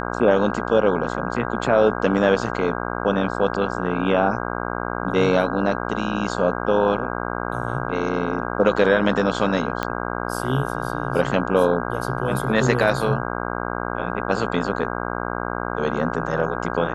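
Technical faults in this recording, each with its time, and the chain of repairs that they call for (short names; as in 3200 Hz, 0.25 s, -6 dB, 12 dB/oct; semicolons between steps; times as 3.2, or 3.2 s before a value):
buzz 60 Hz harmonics 27 -27 dBFS
9.83 pop -9 dBFS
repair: de-click; de-hum 60 Hz, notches 27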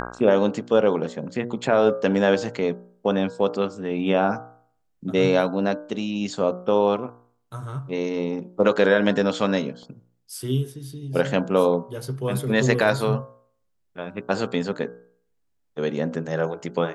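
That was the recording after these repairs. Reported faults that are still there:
9.83 pop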